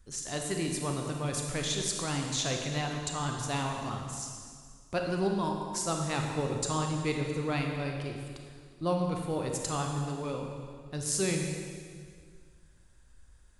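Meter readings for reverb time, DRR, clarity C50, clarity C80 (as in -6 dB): 2.0 s, 1.5 dB, 2.5 dB, 4.0 dB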